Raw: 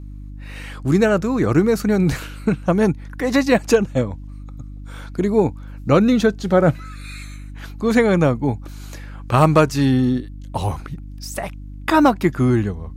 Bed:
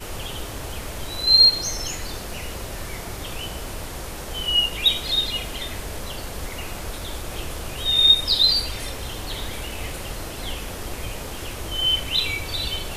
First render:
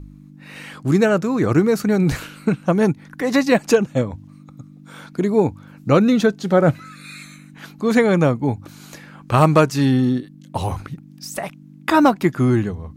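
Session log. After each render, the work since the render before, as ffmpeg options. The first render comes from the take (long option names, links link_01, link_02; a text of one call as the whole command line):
ffmpeg -i in.wav -af "bandreject=frequency=50:width_type=h:width=4,bandreject=frequency=100:width_type=h:width=4" out.wav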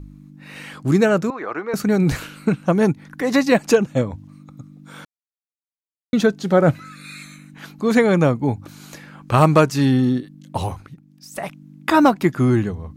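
ffmpeg -i in.wav -filter_complex "[0:a]asettb=1/sr,asplit=3[link_01][link_02][link_03];[link_01]atrim=end=1.304[link_04];[link_02]atrim=start=1.3:end=1.74,asetpts=PTS-STARTPTS,afade=type=in:duration=0.004:curve=qsin,afade=type=out:start_time=0.436:duration=0.004:curve=qsin,highpass=720,lowpass=2100[link_05];[link_03]atrim=start=1.736[link_06];[link_04][link_05]acrossfade=duration=0.004:curve1=hsin:curve2=qsin[link_07];[link_07][link_06]acrossfade=duration=0.004:curve1=qsin:curve2=hsin,asplit=5[link_08][link_09][link_10][link_11][link_12];[link_08]atrim=end=5.05,asetpts=PTS-STARTPTS,afade=type=out:start_time=5.046:duration=0.004:curve=hsin[link_13];[link_09]atrim=start=5.05:end=6.13,asetpts=PTS-STARTPTS,volume=0[link_14];[link_10]atrim=start=6.13:end=10.76,asetpts=PTS-STARTPTS,afade=type=in:duration=0.004:curve=hsin,afade=type=out:start_time=4.5:duration=0.13:silence=0.375837[link_15];[link_11]atrim=start=10.76:end=11.31,asetpts=PTS-STARTPTS,volume=-8.5dB[link_16];[link_12]atrim=start=11.31,asetpts=PTS-STARTPTS,afade=type=in:duration=0.13:silence=0.375837[link_17];[link_13][link_14][link_15][link_16][link_17]concat=n=5:v=0:a=1" out.wav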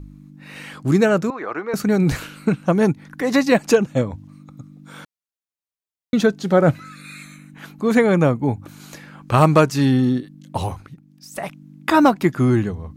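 ffmpeg -i in.wav -filter_complex "[0:a]asettb=1/sr,asplit=3[link_01][link_02][link_03];[link_01]atrim=end=7.014[link_04];[link_02]atrim=start=7.01:end=8.8,asetpts=PTS-STARTPTS,afade=type=in:duration=0.004:curve=qsin,afade=type=out:start_time=1.786:duration=0.004:curve=qsin,equalizer=frequency=4800:width=1.5:gain=-5[link_05];[link_03]atrim=start=8.796[link_06];[link_04][link_05]acrossfade=duration=0.004:curve1=hsin:curve2=qsin[link_07];[link_07][link_06]acrossfade=duration=0.004:curve1=qsin:curve2=hsin" out.wav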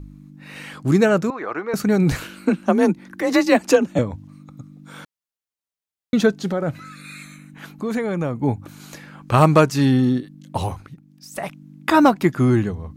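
ffmpeg -i in.wav -filter_complex "[0:a]asettb=1/sr,asplit=3[link_01][link_02][link_03];[link_01]atrim=end=2.244[link_04];[link_02]atrim=start=2.24:end=3.99,asetpts=PTS-STARTPTS,afade=type=in:duration=0.004:curve=qsin,afade=type=out:start_time=1.746:duration=0.004:curve=qsin,afreqshift=37[link_05];[link_03]atrim=start=3.986[link_06];[link_04][link_05]acrossfade=duration=0.004:curve1=hsin:curve2=qsin[link_07];[link_07][link_06]acrossfade=duration=0.004:curve1=qsin:curve2=hsin,asettb=1/sr,asplit=3[link_08][link_09][link_10];[link_08]atrim=end=6.504[link_11];[link_09]atrim=start=6.5:end=8.42,asetpts=PTS-STARTPTS,afade=type=in:duration=0.004:curve=qsin,afade=type=out:start_time=1.916:duration=0.004:curve=qsin,acompressor=threshold=-22dB:ratio=3:attack=3.2:release=140:knee=1:detection=peak[link_12];[link_10]atrim=start=8.416[link_13];[link_11][link_12]acrossfade=duration=0.004:curve1=hsin:curve2=qsin[link_14];[link_14][link_13]acrossfade=duration=0.004:curve1=qsin:curve2=hsin" out.wav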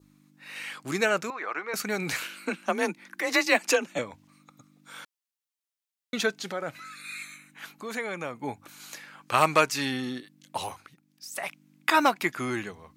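ffmpeg -i in.wav -af "highpass=frequency=1500:poles=1,adynamicequalizer=threshold=0.00631:dfrequency=2300:dqfactor=3.2:tfrequency=2300:tqfactor=3.2:attack=5:release=100:ratio=0.375:range=2.5:mode=boostabove:tftype=bell" out.wav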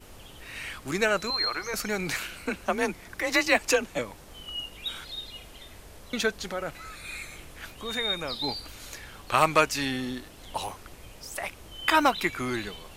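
ffmpeg -i in.wav -i bed.wav -filter_complex "[1:a]volume=-16dB[link_01];[0:a][link_01]amix=inputs=2:normalize=0" out.wav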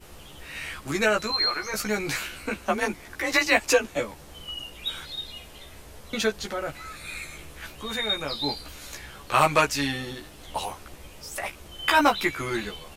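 ffmpeg -i in.wav -filter_complex "[0:a]asplit=2[link_01][link_02];[link_02]adelay=14,volume=-2.5dB[link_03];[link_01][link_03]amix=inputs=2:normalize=0" out.wav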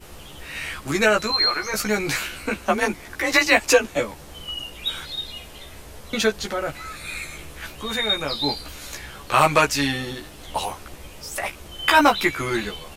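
ffmpeg -i in.wav -af "volume=4.5dB,alimiter=limit=-3dB:level=0:latency=1" out.wav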